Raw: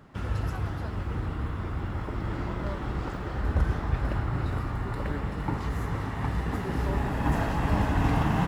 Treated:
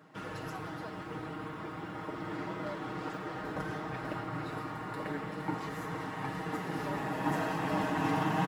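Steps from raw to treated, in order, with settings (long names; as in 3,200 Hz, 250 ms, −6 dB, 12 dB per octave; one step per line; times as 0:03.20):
high-pass filter 220 Hz 12 dB per octave
comb filter 6.4 ms, depth 73%
level −4 dB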